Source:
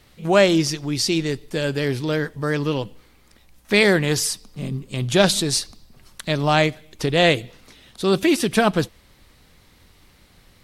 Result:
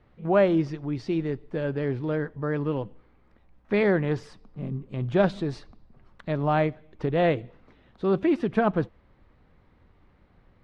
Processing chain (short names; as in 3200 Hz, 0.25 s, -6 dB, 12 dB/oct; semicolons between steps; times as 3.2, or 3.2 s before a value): LPF 1400 Hz 12 dB/oct; gain -4.5 dB